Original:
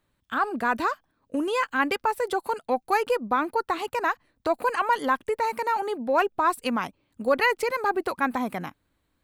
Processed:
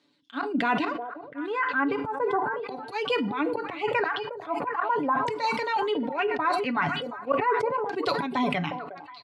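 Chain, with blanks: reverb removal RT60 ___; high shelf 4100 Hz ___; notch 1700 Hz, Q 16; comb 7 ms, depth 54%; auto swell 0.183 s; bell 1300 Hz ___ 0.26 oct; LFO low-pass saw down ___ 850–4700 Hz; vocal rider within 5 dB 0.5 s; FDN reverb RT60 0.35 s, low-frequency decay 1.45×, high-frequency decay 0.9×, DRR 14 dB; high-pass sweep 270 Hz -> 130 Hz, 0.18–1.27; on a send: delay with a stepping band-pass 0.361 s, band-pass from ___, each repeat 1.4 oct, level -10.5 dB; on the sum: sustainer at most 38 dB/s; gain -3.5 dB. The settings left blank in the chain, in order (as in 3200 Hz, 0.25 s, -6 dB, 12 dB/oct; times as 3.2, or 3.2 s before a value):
0.58 s, +7.5 dB, -4.5 dB, 0.38 Hz, 550 Hz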